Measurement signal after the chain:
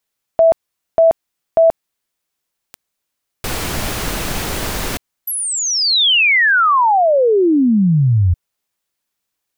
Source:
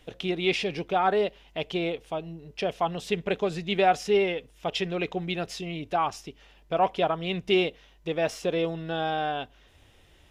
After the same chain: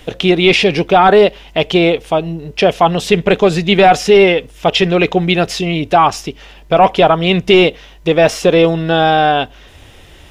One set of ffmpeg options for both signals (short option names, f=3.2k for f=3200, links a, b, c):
-filter_complex "[0:a]acrossover=split=4200[a][b];[b]acompressor=threshold=-39dB:ratio=4:attack=1:release=60[c];[a][c]amix=inputs=2:normalize=0,apsyclip=19.5dB,volume=-2dB"